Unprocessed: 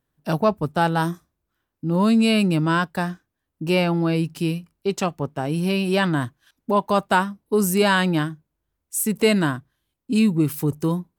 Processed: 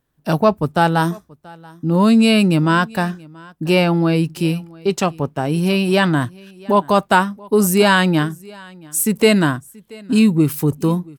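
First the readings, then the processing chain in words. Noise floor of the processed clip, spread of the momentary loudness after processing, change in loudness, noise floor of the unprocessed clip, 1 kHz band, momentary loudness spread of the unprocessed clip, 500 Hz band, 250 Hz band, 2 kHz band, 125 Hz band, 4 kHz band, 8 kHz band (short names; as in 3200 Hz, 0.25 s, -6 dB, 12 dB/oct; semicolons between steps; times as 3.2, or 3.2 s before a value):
-55 dBFS, 11 LU, +5.0 dB, -80 dBFS, +5.0 dB, 10 LU, +5.0 dB, +5.0 dB, +5.0 dB, +5.0 dB, +5.0 dB, +5.0 dB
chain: echo 0.681 s -24 dB; gain +5 dB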